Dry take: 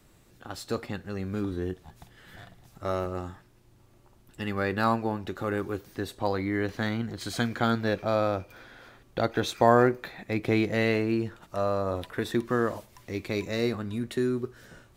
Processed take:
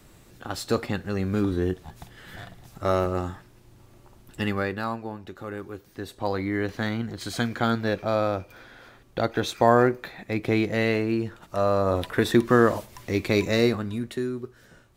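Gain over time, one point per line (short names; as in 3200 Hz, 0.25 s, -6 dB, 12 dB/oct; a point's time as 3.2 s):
4.44 s +6.5 dB
4.87 s -5.5 dB
5.77 s -5.5 dB
6.36 s +1.5 dB
11.23 s +1.5 dB
12.13 s +8 dB
13.52 s +8 dB
14.32 s -3 dB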